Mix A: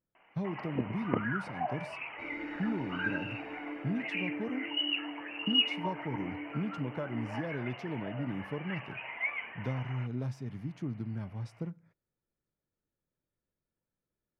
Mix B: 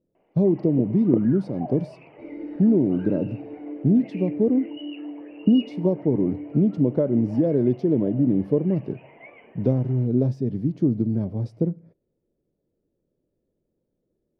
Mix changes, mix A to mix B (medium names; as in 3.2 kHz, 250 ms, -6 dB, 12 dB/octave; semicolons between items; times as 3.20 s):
speech +11.0 dB; master: add FFT filter 110 Hz 0 dB, 380 Hz +9 dB, 580 Hz +5 dB, 890 Hz -8 dB, 1.4 kHz -16 dB, 3 kHz -13 dB, 4.6 kHz -8 dB, 7.1 kHz -15 dB